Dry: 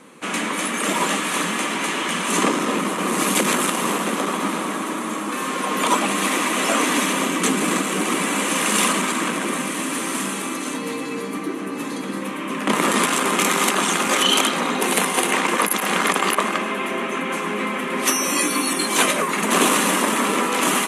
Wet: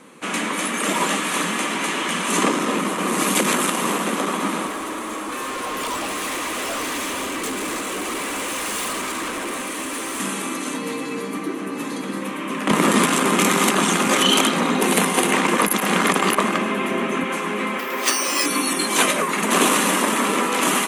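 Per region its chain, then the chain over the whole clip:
4.67–10.2 Chebyshev high-pass 340 Hz + overloaded stage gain 24 dB
12.71–17.24 low shelf 240 Hz +10 dB + hard clip -5.5 dBFS
17.79–18.46 HPF 350 Hz + careless resampling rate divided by 3×, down none, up hold
whole clip: dry

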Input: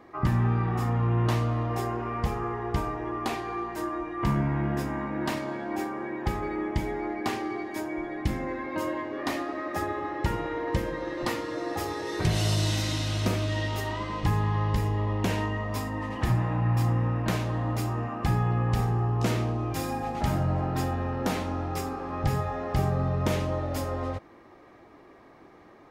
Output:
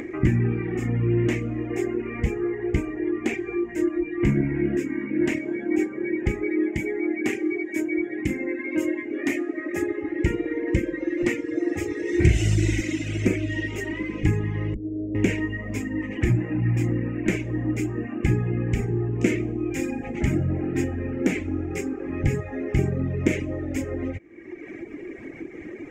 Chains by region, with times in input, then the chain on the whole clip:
4.77–5.21 HPF 99 Hz + bell 700 Hz -10.5 dB 0.4 oct
6.44–10.03 HPF 180 Hz 6 dB/oct + bell 12000 Hz +8.5 dB
12.1–12.81 bell 60 Hz +13 dB 0.78 oct + notch 590 Hz, Q 14 + flutter echo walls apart 6.8 m, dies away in 0.31 s
14.74–15.15 steep low-pass 750 Hz 96 dB/oct + resonator 310 Hz, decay 0.18 s
whole clip: reverb removal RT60 1.2 s; EQ curve 190 Hz 0 dB, 340 Hz +9 dB, 660 Hz -10 dB, 1100 Hz -18 dB, 2200 Hz +8 dB, 4200 Hz -18 dB, 7200 Hz +2 dB, 10000 Hz -13 dB; upward compressor, threshold -30 dBFS; gain +4.5 dB

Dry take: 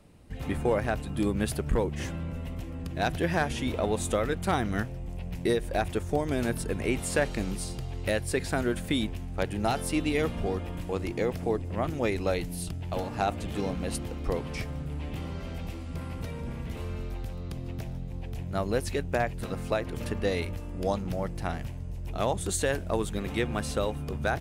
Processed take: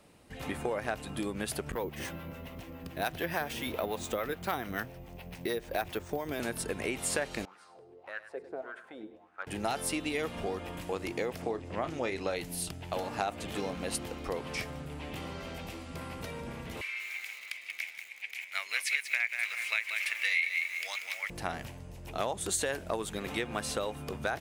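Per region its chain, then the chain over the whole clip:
1.72–6.4 harmonic tremolo 7 Hz, depth 50%, crossover 580 Hz + careless resampling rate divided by 3×, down filtered, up hold
7.45–9.47 wah 1.7 Hz 360–1500 Hz, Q 5.5 + feedback echo 0.101 s, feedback 34%, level -13 dB
11.42–12.36 LPF 7600 Hz + doubler 31 ms -12.5 dB
16.81–21.3 resonant high-pass 2200 Hz, resonance Q 11 + lo-fi delay 0.187 s, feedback 35%, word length 8-bit, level -7 dB
whole clip: low shelf 67 Hz -8 dB; compressor, threshold -29 dBFS; low shelf 300 Hz -10.5 dB; gain +3 dB

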